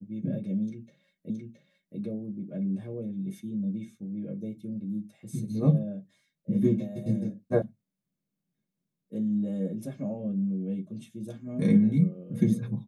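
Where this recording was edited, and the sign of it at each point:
1.3 repeat of the last 0.67 s
7.62 sound cut off

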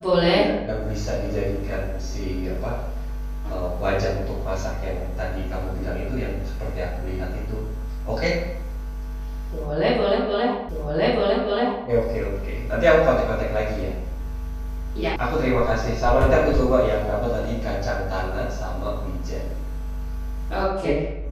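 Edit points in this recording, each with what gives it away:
10.69 repeat of the last 1.18 s
15.16 sound cut off

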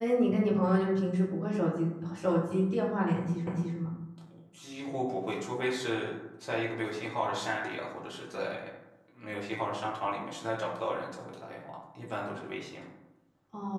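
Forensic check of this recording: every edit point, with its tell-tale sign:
3.47 repeat of the last 0.29 s

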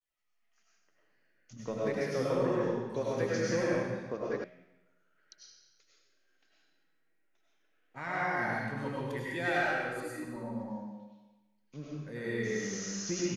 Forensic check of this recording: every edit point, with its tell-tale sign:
4.44 sound cut off

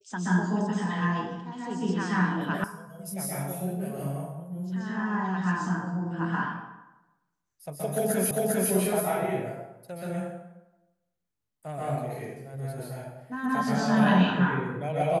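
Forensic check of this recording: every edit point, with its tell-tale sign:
2.64 sound cut off
8.31 repeat of the last 0.4 s

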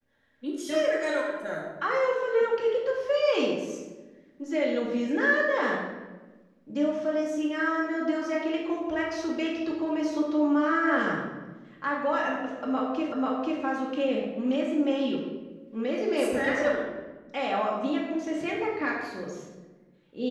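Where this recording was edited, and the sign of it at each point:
13.12 repeat of the last 0.49 s

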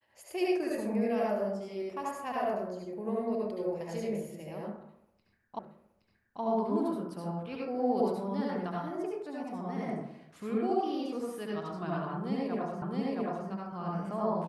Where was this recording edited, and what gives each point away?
5.59 repeat of the last 0.82 s
12.82 repeat of the last 0.67 s

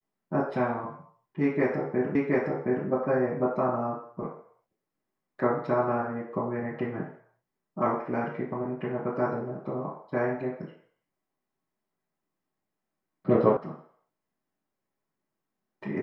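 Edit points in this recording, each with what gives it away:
2.15 repeat of the last 0.72 s
13.57 sound cut off

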